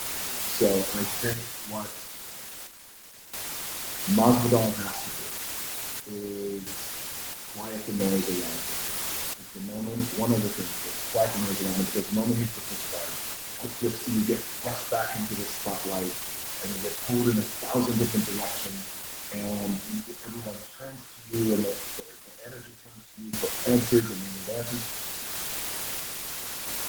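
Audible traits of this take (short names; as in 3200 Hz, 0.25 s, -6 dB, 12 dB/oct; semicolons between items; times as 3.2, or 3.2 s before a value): phasing stages 8, 0.52 Hz, lowest notch 270–2200 Hz; a quantiser's noise floor 6-bit, dither triangular; random-step tremolo 1.5 Hz, depth 90%; Opus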